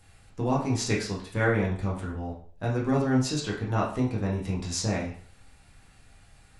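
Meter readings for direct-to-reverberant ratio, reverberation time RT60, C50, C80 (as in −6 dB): −5.0 dB, 0.45 s, 6.0 dB, 11.0 dB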